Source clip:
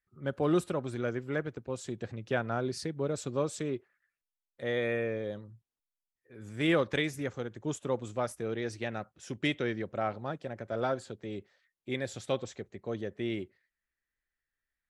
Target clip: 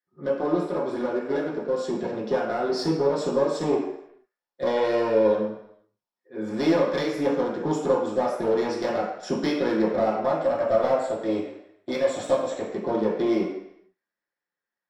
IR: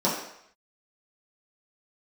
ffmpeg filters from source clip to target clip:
-filter_complex "[0:a]agate=range=-9dB:threshold=-52dB:ratio=16:detection=peak,bass=frequency=250:gain=-14,treble=frequency=4000:gain=-8,acompressor=threshold=-38dB:ratio=5,asettb=1/sr,asplit=3[link_01][link_02][link_03];[link_01]atrim=end=10.234[link_04];[link_02]atrim=start=10.23:end=12.69,asetpts=PTS-STARTPTS,afade=type=in:duration=0.004:curve=qsin,afade=type=out:start_time=2.456:duration=0.004:curve=qsin,equalizer=frequency=100:width_type=o:width=0.33:gain=6,equalizer=frequency=200:width_type=o:width=0.33:gain=-12,equalizer=frequency=400:width_type=o:width=0.33:gain=-10,equalizer=frequency=630:width_type=o:width=0.33:gain=6,equalizer=frequency=5000:width_type=o:width=0.33:gain=-10,equalizer=frequency=8000:width_type=o:width=0.33:gain=11[link_05];[link_03]atrim=start=12.686[link_06];[link_04][link_05]acrossfade=duration=0.004:curve1=hsin:curve2=qsin[link_07];[link_07][link_06]acrossfade=duration=0.004:curve1=qsin:curve2=hsin,dynaudnorm=framelen=640:gausssize=7:maxgain=4dB,aeval=exprs='clip(val(0),-1,0.00944)':channel_layout=same[link_08];[1:a]atrim=start_sample=2205,asetrate=41895,aresample=44100[link_09];[link_08][link_09]afir=irnorm=-1:irlink=0"

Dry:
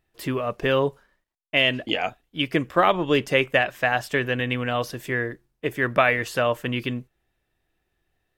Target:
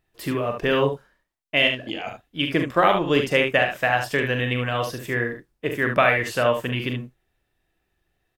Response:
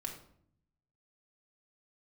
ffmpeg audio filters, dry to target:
-filter_complex "[0:a]asettb=1/sr,asplit=3[link_01][link_02][link_03];[link_01]atrim=end=1.674[link_04];[link_02]atrim=start=1.67:end=2.07,asetpts=PTS-STARTPTS,afade=type=in:duration=0.004:curve=qsin,afade=type=out:start_time=0.396:duration=0.004:curve=qsin,acompressor=threshold=-28dB:ratio=10[link_05];[link_03]atrim=start=2.066[link_06];[link_04][link_05]acrossfade=duration=0.004:curve1=hsin:curve2=qsin[link_07];[link_07][link_06]acrossfade=duration=0.004:curve1=qsin:curve2=hsin,aecho=1:1:42|72:0.422|0.447"

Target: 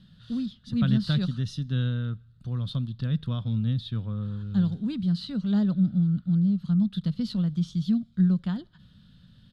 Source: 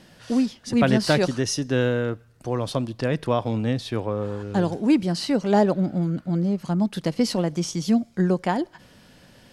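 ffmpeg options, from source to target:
ffmpeg -i in.wav -af "firequalizer=gain_entry='entry(190,0);entry(320,-21);entry(840,-26);entry(1300,-11);entry(2200,-23);entry(3600,-2);entry(5600,-23)':delay=0.05:min_phase=1,volume=1.5dB" out.wav

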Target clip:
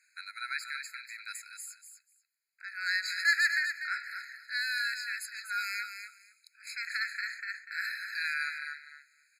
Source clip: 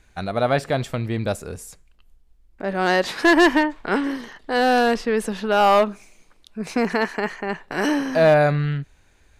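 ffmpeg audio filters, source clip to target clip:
ffmpeg -i in.wav -af "equalizer=frequency=470:width=0.35:gain=-10.5,aecho=1:1:245|490:0.398|0.0597,afftfilt=real='re*eq(mod(floor(b*sr/1024/1300),2),1)':imag='im*eq(mod(floor(b*sr/1024/1300),2),1)':win_size=1024:overlap=0.75,volume=-1.5dB" out.wav

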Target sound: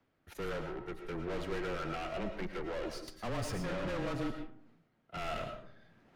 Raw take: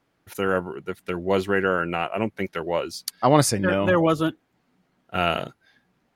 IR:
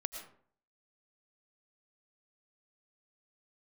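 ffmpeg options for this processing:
-filter_complex "[0:a]aeval=exprs='(tanh(50.1*val(0)+0.8)-tanh(0.8))/50.1':channel_layout=same,acrossover=split=740|1100[link_01][link_02][link_03];[link_02]aeval=exprs='max(val(0),0)':channel_layout=same[link_04];[link_01][link_04][link_03]amix=inputs=3:normalize=0,afreqshift=-18[link_05];[1:a]atrim=start_sample=2205[link_06];[link_05][link_06]afir=irnorm=-1:irlink=0,areverse,acompressor=mode=upward:threshold=-53dB:ratio=2.5,areverse,lowpass=frequency=2700:poles=1"

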